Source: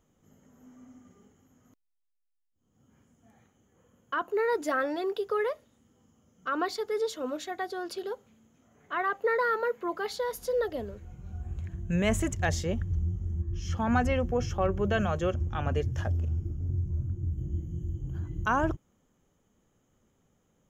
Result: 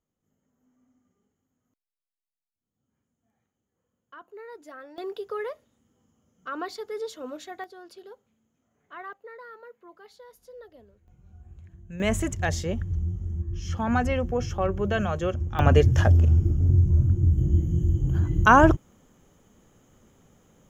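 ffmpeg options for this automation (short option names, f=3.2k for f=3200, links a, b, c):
-af "asetnsamples=n=441:p=0,asendcmd='4.98 volume volume -3.5dB;7.64 volume volume -10.5dB;9.13 volume volume -17.5dB;11.08 volume volume -11dB;12 volume volume 1.5dB;15.59 volume volume 11.5dB',volume=-15.5dB"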